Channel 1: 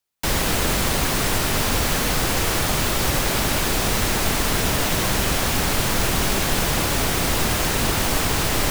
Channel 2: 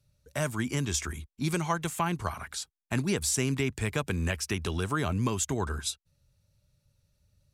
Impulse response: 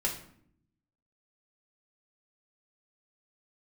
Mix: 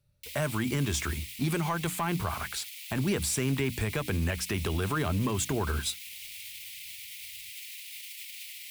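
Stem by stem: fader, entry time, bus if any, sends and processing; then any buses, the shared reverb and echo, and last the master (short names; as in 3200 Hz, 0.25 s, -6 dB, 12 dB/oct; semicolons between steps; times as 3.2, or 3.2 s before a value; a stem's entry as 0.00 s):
-12.0 dB, 0.00 s, no send, limiter -15 dBFS, peak gain reduction 7.5 dB; steep high-pass 2100 Hz 72 dB/oct
+1.0 dB, 0.00 s, no send, sample leveller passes 1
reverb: off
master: bell 6300 Hz -7 dB 1 oct; notches 60/120/180/240/300 Hz; limiter -20.5 dBFS, peak gain reduction 6.5 dB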